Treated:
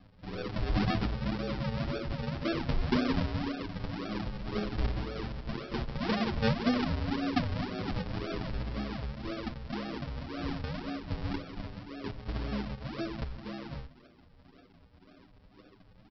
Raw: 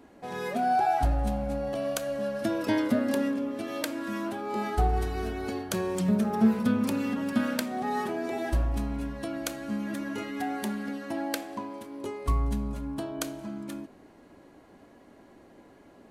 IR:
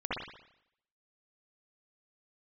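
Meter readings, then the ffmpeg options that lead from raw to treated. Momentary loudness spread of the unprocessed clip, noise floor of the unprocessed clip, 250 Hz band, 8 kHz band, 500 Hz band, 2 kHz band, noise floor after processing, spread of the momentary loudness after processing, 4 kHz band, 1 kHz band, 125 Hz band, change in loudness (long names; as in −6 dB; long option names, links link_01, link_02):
10 LU, −55 dBFS, −5.0 dB, below −15 dB, −6.0 dB, −2.5 dB, −59 dBFS, 10 LU, +1.0 dB, −9.0 dB, 0.0 dB, −4.5 dB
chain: -filter_complex "[0:a]highpass=94,aresample=11025,acrusher=samples=22:mix=1:aa=0.000001:lfo=1:lforange=22:lforate=1.9,aresample=44100,asplit=2[link_01][link_02];[link_02]adelay=7.7,afreqshift=0.26[link_03];[link_01][link_03]amix=inputs=2:normalize=1"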